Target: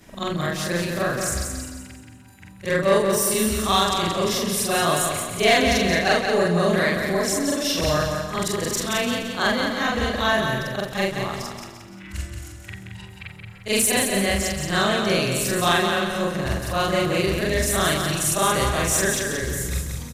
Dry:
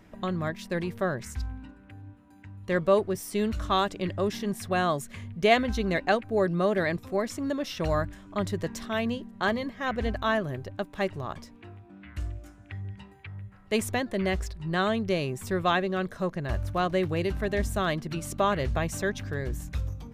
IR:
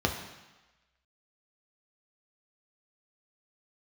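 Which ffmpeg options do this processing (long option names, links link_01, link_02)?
-filter_complex "[0:a]afftfilt=real='re':imag='-im':win_size=4096:overlap=0.75,equalizer=frequency=10000:width_type=o:width=2.6:gain=14.5,asplit=2[link_01][link_02];[link_02]aecho=0:1:296:0.188[link_03];[link_01][link_03]amix=inputs=2:normalize=0,asoftclip=type=tanh:threshold=-17dB,asplit=2[link_04][link_05];[link_05]aecho=0:1:176|352|528|704|880:0.531|0.212|0.0849|0.034|0.0136[link_06];[link_04][link_06]amix=inputs=2:normalize=0,volume=8.5dB"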